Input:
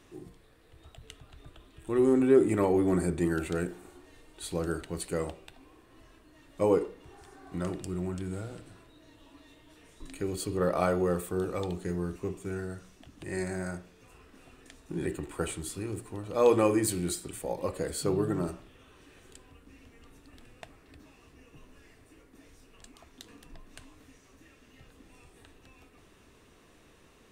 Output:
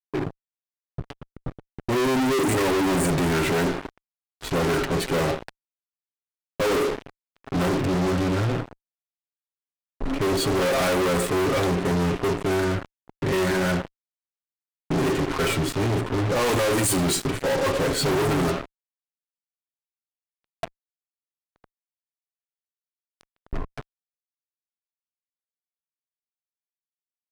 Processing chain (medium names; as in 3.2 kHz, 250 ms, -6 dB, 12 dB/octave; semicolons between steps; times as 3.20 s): gate -49 dBFS, range -7 dB; treble shelf 7.5 kHz +8 dB; comb 7.4 ms, depth 65%; speakerphone echo 110 ms, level -20 dB; level-controlled noise filter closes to 900 Hz, open at -20.5 dBFS; fuzz box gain 47 dB, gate -48 dBFS; trim -7.5 dB